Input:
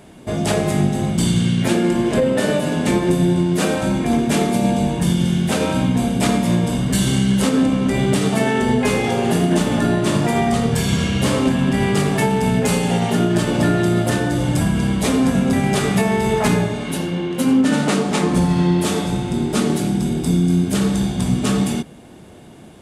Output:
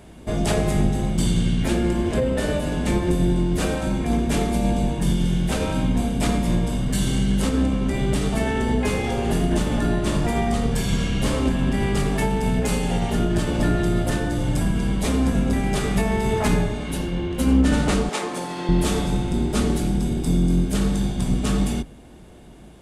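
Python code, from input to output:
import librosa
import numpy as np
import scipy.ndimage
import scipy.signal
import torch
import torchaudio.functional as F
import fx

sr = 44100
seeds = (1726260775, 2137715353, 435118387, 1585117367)

y = fx.octave_divider(x, sr, octaves=2, level_db=0.0)
y = fx.highpass(y, sr, hz=430.0, slope=12, at=(18.09, 18.69))
y = fx.rider(y, sr, range_db=4, speed_s=2.0)
y = F.gain(torch.from_numpy(y), -5.5).numpy()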